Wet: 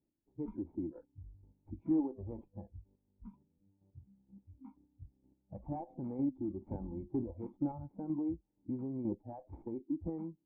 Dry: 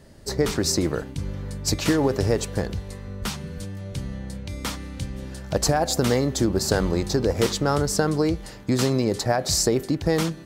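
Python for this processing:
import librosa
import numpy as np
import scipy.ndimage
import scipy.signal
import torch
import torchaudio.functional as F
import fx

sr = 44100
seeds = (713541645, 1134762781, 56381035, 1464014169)

y = fx.quant_companded(x, sr, bits=4)
y = fx.dynamic_eq(y, sr, hz=320.0, q=0.94, threshold_db=-34.0, ratio=4.0, max_db=-5)
y = fx.noise_reduce_blind(y, sr, reduce_db=27)
y = fx.chopper(y, sr, hz=2.1, depth_pct=60, duty_pct=20)
y = fx.tube_stage(y, sr, drive_db=24.0, bias=0.25)
y = fx.formant_cascade(y, sr, vowel='u')
y = fx.air_absorb(y, sr, metres=380.0)
y = y * 10.0 ** (4.5 / 20.0)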